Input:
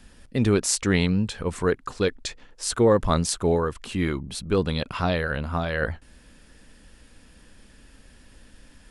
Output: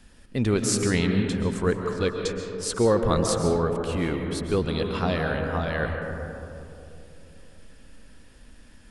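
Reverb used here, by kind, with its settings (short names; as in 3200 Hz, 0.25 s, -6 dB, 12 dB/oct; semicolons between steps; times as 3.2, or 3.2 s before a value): digital reverb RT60 3 s, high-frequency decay 0.25×, pre-delay 95 ms, DRR 3.5 dB; gain -2.5 dB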